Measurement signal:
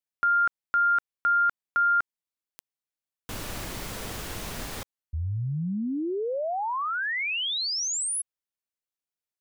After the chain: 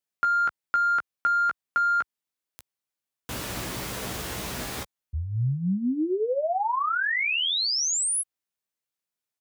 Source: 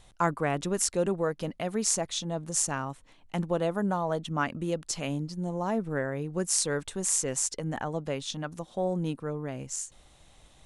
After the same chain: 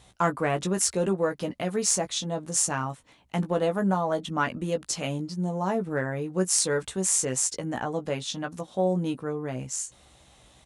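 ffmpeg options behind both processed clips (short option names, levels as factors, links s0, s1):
-filter_complex "[0:a]highpass=59,asplit=2[s0][s1];[s1]volume=10.6,asoftclip=hard,volume=0.0944,volume=0.282[s2];[s0][s2]amix=inputs=2:normalize=0,asplit=2[s3][s4];[s4]adelay=16,volume=0.501[s5];[s3][s5]amix=inputs=2:normalize=0"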